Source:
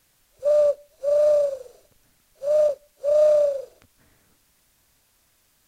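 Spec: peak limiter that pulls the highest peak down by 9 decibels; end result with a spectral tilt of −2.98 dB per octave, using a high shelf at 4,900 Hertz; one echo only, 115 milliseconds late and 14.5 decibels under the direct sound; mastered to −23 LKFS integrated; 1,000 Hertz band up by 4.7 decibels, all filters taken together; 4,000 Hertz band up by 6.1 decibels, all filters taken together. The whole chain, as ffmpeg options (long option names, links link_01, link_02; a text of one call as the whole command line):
ffmpeg -i in.wav -af "equalizer=frequency=1000:width_type=o:gain=6,equalizer=frequency=4000:width_type=o:gain=3.5,highshelf=frequency=4900:gain=7,alimiter=limit=-17dB:level=0:latency=1,aecho=1:1:115:0.188,volume=1.5dB" out.wav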